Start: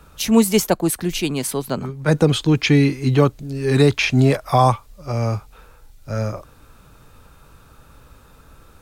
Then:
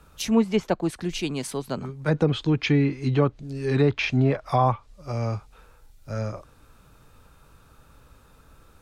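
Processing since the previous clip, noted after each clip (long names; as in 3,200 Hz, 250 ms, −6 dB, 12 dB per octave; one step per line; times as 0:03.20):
treble cut that deepens with the level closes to 2,300 Hz, closed at −10.5 dBFS
level −6 dB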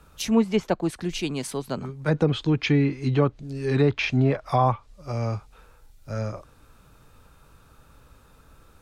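no processing that can be heard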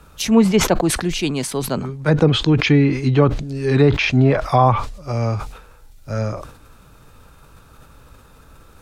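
level that may fall only so fast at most 82 dB per second
level +6.5 dB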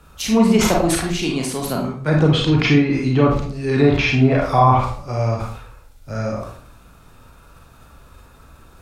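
convolution reverb RT60 0.50 s, pre-delay 30 ms, DRR −1.5 dB
level −3 dB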